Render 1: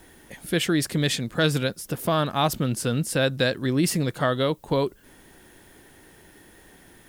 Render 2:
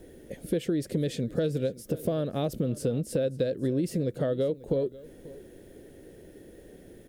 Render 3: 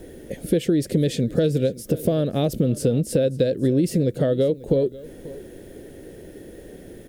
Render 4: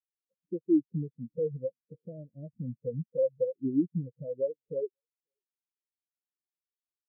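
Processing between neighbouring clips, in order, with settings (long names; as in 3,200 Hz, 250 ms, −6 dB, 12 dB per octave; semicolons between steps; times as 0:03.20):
low shelf with overshoot 700 Hz +10 dB, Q 3; downward compressor 6 to 1, threshold −17 dBFS, peak gain reduction 12.5 dB; single-tap delay 540 ms −19.5 dB; level −8 dB
dynamic equaliser 1,100 Hz, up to −6 dB, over −47 dBFS, Q 1.1; level +8.5 dB
mu-law and A-law mismatch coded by mu; every bin expanded away from the loudest bin 4 to 1; level −8 dB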